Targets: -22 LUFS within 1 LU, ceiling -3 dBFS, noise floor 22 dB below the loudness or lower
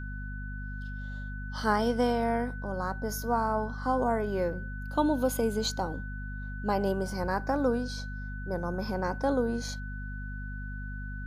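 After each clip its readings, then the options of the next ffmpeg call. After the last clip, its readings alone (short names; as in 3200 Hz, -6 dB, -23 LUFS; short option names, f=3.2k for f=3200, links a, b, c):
hum 50 Hz; harmonics up to 250 Hz; hum level -35 dBFS; steady tone 1500 Hz; tone level -43 dBFS; loudness -31.5 LUFS; peak -12.5 dBFS; loudness target -22.0 LUFS
-> -af "bandreject=f=50:t=h:w=6,bandreject=f=100:t=h:w=6,bandreject=f=150:t=h:w=6,bandreject=f=200:t=h:w=6,bandreject=f=250:t=h:w=6"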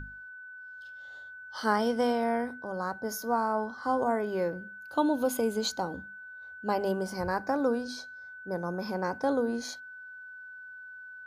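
hum none; steady tone 1500 Hz; tone level -43 dBFS
-> -af "bandreject=f=1.5k:w=30"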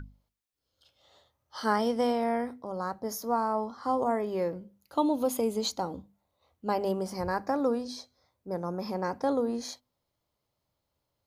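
steady tone none; loudness -31.0 LUFS; peak -13.0 dBFS; loudness target -22.0 LUFS
-> -af "volume=9dB"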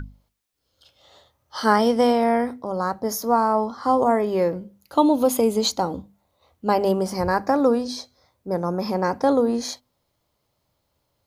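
loudness -22.0 LUFS; peak -4.0 dBFS; noise floor -73 dBFS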